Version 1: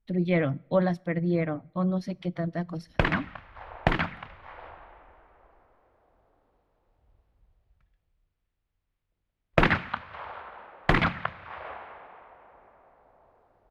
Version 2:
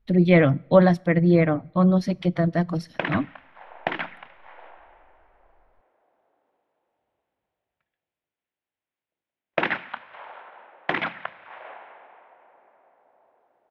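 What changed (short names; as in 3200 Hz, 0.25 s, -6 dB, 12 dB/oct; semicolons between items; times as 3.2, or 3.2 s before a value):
speech +8.5 dB; background: add speaker cabinet 340–4800 Hz, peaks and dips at 450 Hz -3 dB, 1200 Hz -6 dB, 4500 Hz -9 dB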